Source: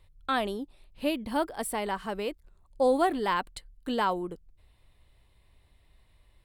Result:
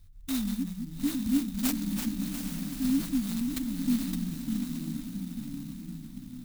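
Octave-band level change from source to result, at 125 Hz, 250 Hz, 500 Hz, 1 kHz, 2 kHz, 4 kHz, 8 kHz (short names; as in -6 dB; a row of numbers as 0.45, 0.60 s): +11.5 dB, +6.5 dB, under -20 dB, -21.5 dB, -10.5 dB, -2.0 dB, +5.5 dB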